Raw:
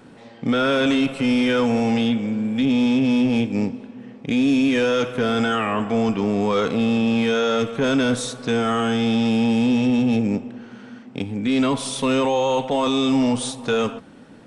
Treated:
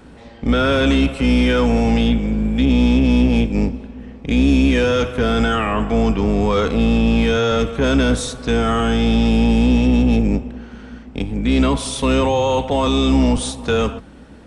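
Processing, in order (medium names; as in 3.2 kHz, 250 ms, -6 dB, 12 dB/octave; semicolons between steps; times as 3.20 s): octave divider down 2 oct, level -1 dB; trim +2.5 dB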